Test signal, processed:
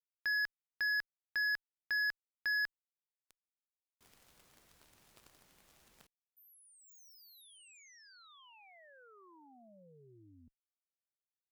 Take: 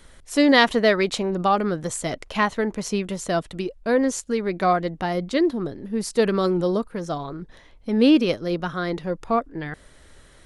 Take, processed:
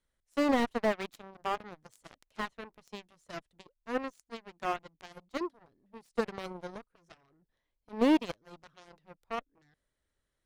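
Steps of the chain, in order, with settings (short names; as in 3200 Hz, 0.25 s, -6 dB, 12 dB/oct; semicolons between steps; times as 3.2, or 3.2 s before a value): added harmonics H 3 -45 dB, 5 -17 dB, 7 -12 dB, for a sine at -2 dBFS; slew limiter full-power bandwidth 170 Hz; gain -9 dB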